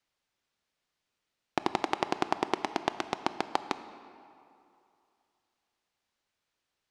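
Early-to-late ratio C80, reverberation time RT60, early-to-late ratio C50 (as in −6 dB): 13.0 dB, 2.6 s, 12.5 dB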